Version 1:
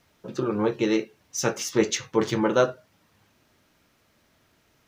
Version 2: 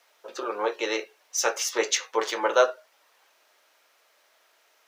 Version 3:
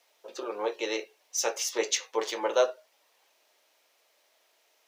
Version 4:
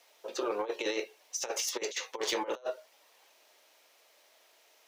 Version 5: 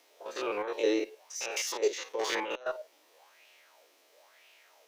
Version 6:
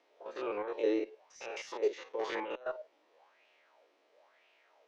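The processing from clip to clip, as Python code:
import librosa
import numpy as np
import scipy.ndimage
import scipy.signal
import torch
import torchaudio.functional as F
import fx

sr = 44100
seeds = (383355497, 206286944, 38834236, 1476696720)

y1 = scipy.signal.sosfilt(scipy.signal.butter(4, 510.0, 'highpass', fs=sr, output='sos'), x)
y1 = F.gain(torch.from_numpy(y1), 3.0).numpy()
y2 = fx.peak_eq(y1, sr, hz=1400.0, db=-8.0, octaves=0.86)
y2 = F.gain(torch.from_numpy(y2), -2.5).numpy()
y3 = fx.over_compress(y2, sr, threshold_db=-33.0, ratio=-0.5)
y3 = 10.0 ** (-19.5 / 20.0) * np.tanh(y3 / 10.0 ** (-19.5 / 20.0))
y4 = fx.spec_steps(y3, sr, hold_ms=50)
y4 = fx.cheby_harmonics(y4, sr, harmonics=(4,), levels_db=(-37,), full_scale_db=-20.5)
y4 = fx.bell_lfo(y4, sr, hz=1.0, low_hz=290.0, high_hz=2700.0, db=13)
y5 = fx.spacing_loss(y4, sr, db_at_10k=27)
y5 = F.gain(torch.from_numpy(y5), -1.5).numpy()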